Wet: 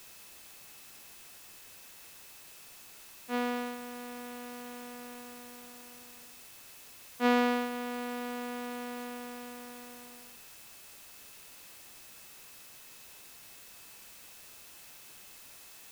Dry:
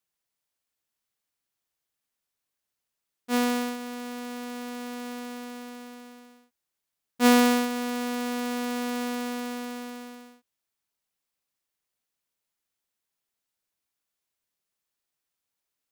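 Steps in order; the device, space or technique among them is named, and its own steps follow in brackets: shortwave radio (band-pass 270–3000 Hz; tremolo 0.26 Hz, depth 45%; whistle 2.6 kHz -59 dBFS; white noise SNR 12 dB); trim -4.5 dB

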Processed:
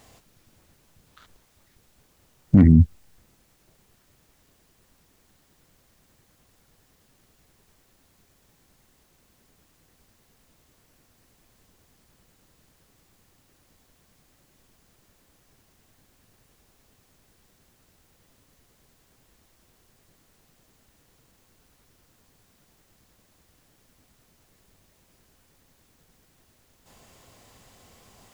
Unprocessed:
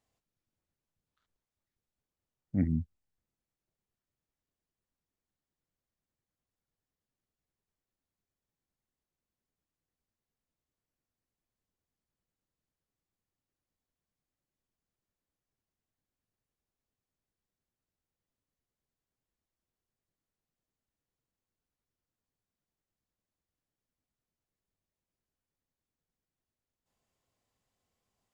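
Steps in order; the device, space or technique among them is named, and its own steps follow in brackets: loud club master (compression 2.5:1, threshold -29 dBFS, peak gain reduction 5.5 dB; hard clipper -23.5 dBFS, distortion -29 dB; loudness maximiser +33 dB); trim -4 dB

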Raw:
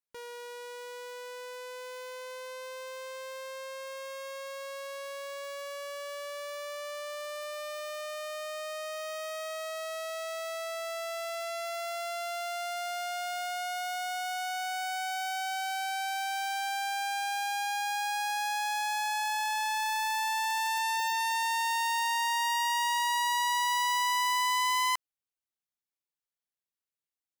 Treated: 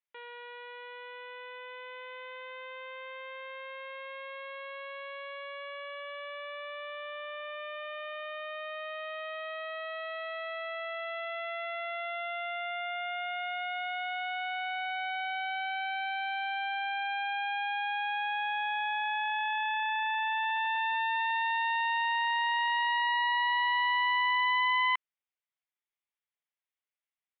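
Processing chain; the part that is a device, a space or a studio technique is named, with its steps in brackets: musical greeting card (resampled via 8 kHz; high-pass 620 Hz; peaking EQ 2.1 kHz +5.5 dB 0.37 oct)

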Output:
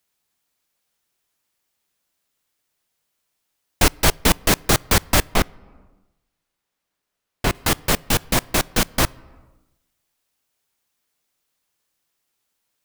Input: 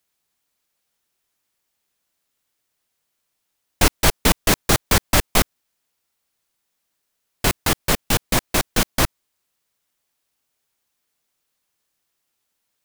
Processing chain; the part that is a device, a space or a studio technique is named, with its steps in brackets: compressed reverb return (on a send at -11 dB: reverberation RT60 0.90 s, pre-delay 10 ms + compression 8:1, threshold -29 dBFS, peak gain reduction 17 dB); 5.34–7.55 s: on the sum: treble shelf 4.2 kHz -9 dB

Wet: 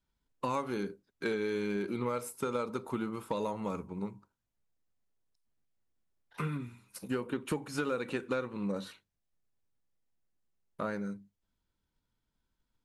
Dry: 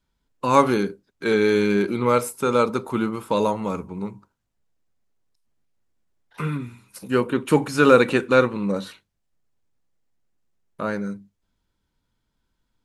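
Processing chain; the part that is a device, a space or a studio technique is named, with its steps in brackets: drum-bus smash (transient shaper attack +4 dB, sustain 0 dB; compression 10:1, threshold -20 dBFS, peak gain reduction 13.5 dB; saturation -12 dBFS, distortion -23 dB); trim -8.5 dB

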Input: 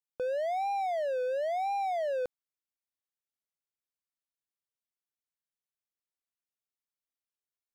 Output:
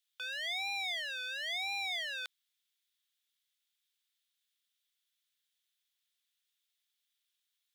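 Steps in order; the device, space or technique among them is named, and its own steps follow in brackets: headphones lying on a table (high-pass 1.5 kHz 24 dB/octave; peaking EQ 3.5 kHz +12 dB 0.5 oct); trim +8.5 dB

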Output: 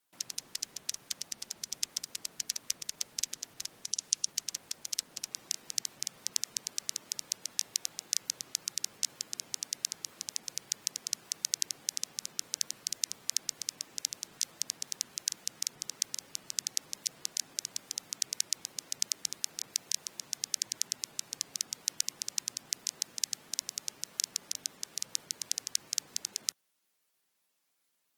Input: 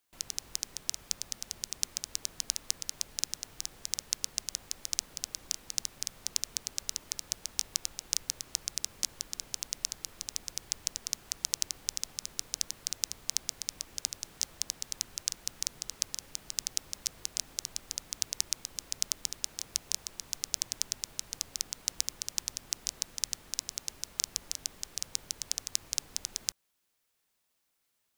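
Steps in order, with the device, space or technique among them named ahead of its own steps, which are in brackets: high-pass 110 Hz 24 dB/octave; 3.80–4.30 s: dynamic bell 5.9 kHz, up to +5 dB, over -48 dBFS, Q 2; noise-suppressed video call (high-pass 110 Hz 12 dB/octave; spectral gate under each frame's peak -20 dB strong; Opus 20 kbps 48 kHz)

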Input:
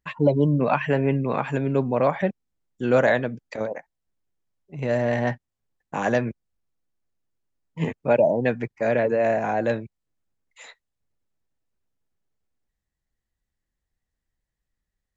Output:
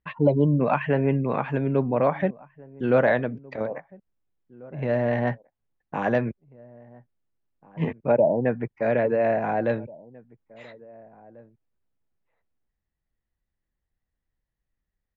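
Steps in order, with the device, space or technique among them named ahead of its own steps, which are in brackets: shout across a valley (distance through air 270 m; echo from a far wall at 290 m, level -23 dB); 8.11–8.67 s: low-pass 1.3 kHz -> 2 kHz 12 dB/octave

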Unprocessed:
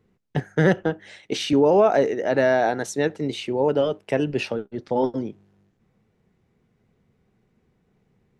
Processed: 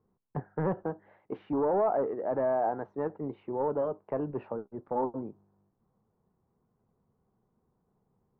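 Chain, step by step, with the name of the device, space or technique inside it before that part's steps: overdriven synthesiser ladder filter (saturation -14 dBFS, distortion -14 dB; four-pole ladder low-pass 1.2 kHz, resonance 50%)

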